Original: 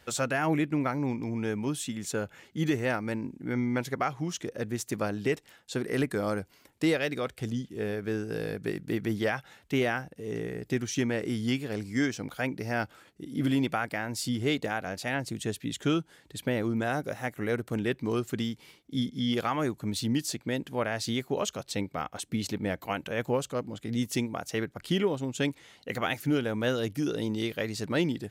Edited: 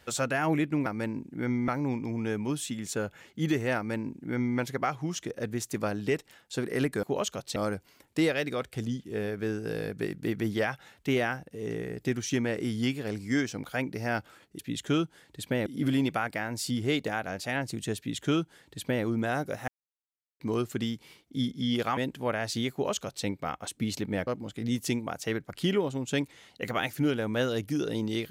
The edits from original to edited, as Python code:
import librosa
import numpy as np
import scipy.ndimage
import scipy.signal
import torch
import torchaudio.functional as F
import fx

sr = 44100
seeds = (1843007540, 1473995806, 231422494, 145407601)

y = fx.edit(x, sr, fx.duplicate(start_s=2.94, length_s=0.82, to_s=0.86),
    fx.duplicate(start_s=15.55, length_s=1.07, to_s=13.24),
    fx.silence(start_s=17.26, length_s=0.72),
    fx.cut(start_s=19.55, length_s=0.94),
    fx.duplicate(start_s=21.24, length_s=0.53, to_s=6.21),
    fx.cut(start_s=22.79, length_s=0.75), tone=tone)